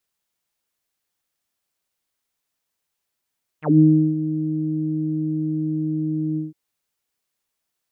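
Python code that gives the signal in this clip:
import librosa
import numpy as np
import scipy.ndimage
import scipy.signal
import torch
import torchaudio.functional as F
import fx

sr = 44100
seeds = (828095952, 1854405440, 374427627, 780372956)

y = fx.sub_voice(sr, note=51, wave='saw', cutoff_hz=290.0, q=7.7, env_oct=3.5, env_s=0.08, attack_ms=167.0, decay_s=0.36, sustain_db=-12, release_s=0.16, note_s=2.75, slope=24)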